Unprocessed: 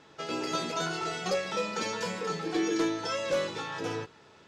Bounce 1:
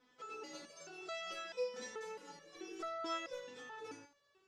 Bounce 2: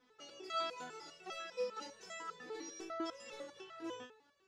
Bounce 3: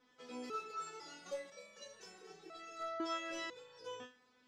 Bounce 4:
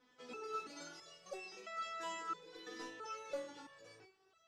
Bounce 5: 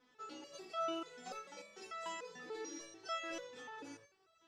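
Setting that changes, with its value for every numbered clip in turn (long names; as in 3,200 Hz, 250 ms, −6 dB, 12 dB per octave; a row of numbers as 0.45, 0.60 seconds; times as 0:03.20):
step-sequenced resonator, speed: 4.6, 10, 2, 3, 6.8 Hertz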